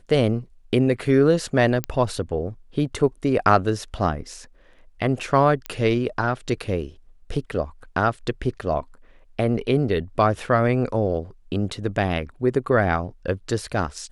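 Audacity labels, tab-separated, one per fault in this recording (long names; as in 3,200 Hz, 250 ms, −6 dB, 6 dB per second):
1.840000	1.840000	click −10 dBFS
5.660000	5.660000	click −14 dBFS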